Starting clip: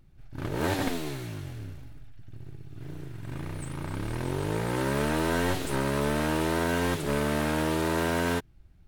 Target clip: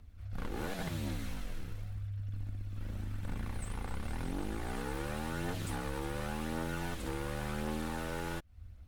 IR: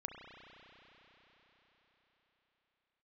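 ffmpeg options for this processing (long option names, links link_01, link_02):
-af "afreqshift=-100,acompressor=threshold=-37dB:ratio=6,aphaser=in_gain=1:out_gain=1:delay=2.5:decay=0.27:speed=0.91:type=triangular,volume=1.5dB"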